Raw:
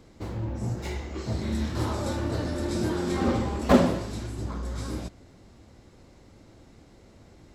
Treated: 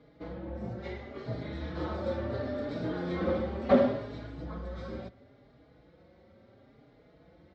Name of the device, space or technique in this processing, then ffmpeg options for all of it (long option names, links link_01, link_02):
barber-pole flanger into a guitar amplifier: -filter_complex "[0:a]asplit=2[link_01][link_02];[link_02]adelay=4.4,afreqshift=0.72[link_03];[link_01][link_03]amix=inputs=2:normalize=1,asoftclip=type=tanh:threshold=-13dB,highpass=85,equalizer=frequency=100:width_type=q:width=4:gain=-8,equalizer=frequency=220:width_type=q:width=4:gain=-3,equalizer=frequency=340:width_type=q:width=4:gain=-4,equalizer=frequency=550:width_type=q:width=4:gain=5,equalizer=frequency=970:width_type=q:width=4:gain=-6,equalizer=frequency=2700:width_type=q:width=4:gain=-8,lowpass=frequency=3600:width=0.5412,lowpass=frequency=3600:width=1.3066"